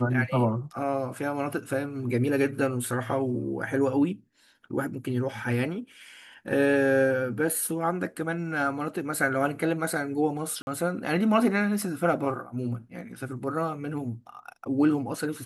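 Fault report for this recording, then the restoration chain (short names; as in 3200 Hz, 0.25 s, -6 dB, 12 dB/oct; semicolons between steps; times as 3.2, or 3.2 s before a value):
10.62–10.67 gap 51 ms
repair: interpolate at 10.62, 51 ms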